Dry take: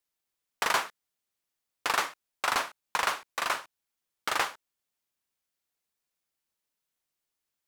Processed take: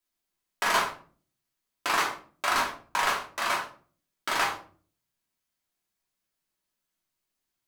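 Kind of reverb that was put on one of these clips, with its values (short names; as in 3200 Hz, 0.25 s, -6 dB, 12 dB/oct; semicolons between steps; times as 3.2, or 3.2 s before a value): shoebox room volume 340 m³, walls furnished, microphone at 2.9 m; gain -2.5 dB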